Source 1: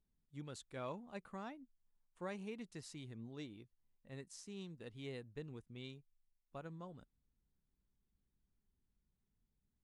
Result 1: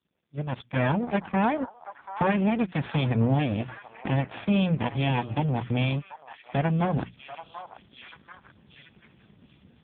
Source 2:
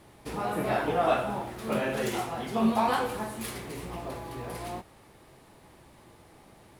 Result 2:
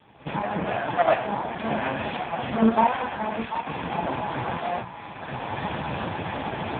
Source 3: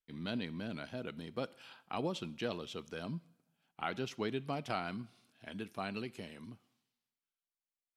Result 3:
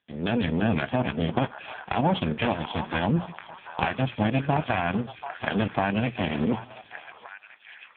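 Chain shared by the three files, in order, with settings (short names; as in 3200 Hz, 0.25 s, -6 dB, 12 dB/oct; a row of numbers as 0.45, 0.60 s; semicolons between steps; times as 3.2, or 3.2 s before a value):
minimum comb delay 1.2 ms; recorder AGC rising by 23 dB/s; notches 60/120/180 Hz; in parallel at +1 dB: level quantiser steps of 13 dB; on the sum: delay with a stepping band-pass 0.736 s, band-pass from 980 Hz, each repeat 0.7 oct, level -8 dB; AMR-NB 5.15 kbps 8000 Hz; match loudness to -27 LUFS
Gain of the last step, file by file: +5.0, +3.0, +7.0 dB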